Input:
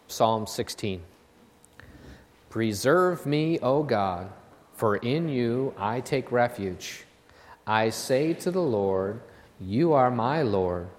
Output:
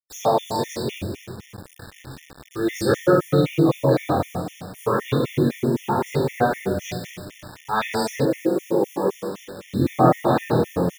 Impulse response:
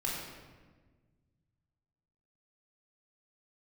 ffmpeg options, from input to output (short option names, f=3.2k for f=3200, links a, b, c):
-filter_complex "[0:a]asplit=2[a][b];[b]adelay=106,lowpass=f=1.3k:p=1,volume=-11.5dB,asplit=2[c][d];[d]adelay=106,lowpass=f=1.3k:p=1,volume=0.52,asplit=2[e][f];[f]adelay=106,lowpass=f=1.3k:p=1,volume=0.52,asplit=2[g][h];[h]adelay=106,lowpass=f=1.3k:p=1,volume=0.52,asplit=2[i][j];[j]adelay=106,lowpass=f=1.3k:p=1,volume=0.52,asplit=2[k][l];[l]adelay=106,lowpass=f=1.3k:p=1,volume=0.52[m];[a][c][e][g][i][k][m]amix=inputs=7:normalize=0[n];[1:a]atrim=start_sample=2205[o];[n][o]afir=irnorm=-1:irlink=0,flanger=delay=20:depth=3.2:speed=0.33,asettb=1/sr,asplit=3[p][q][r];[p]atrim=end=8.254[s];[q]atrim=start=8.25:end=9.73,asetpts=PTS-STARTPTS,afade=t=in:d=0.004:c=qsin,afade=t=out:st=1.476:d=0.004:c=qsin,highpass=240,lowpass=2k[t];[r]atrim=start=9.726[u];[s][t]acrossfade=d=0.004:c1=hsin:c2=qsin[v];[v][u]acrossfade=d=0.004:c1=qsin:c2=hsin,acrusher=bits=6:mix=0:aa=0.000001,afftfilt=real='re*gt(sin(2*PI*3.9*pts/sr)*(1-2*mod(floor(b*sr/1024/1800),2)),0)':imag='im*gt(sin(2*PI*3.9*pts/sr)*(1-2*mod(floor(b*sr/1024/1800),2)),0)':win_size=1024:overlap=0.75,volume=4dB"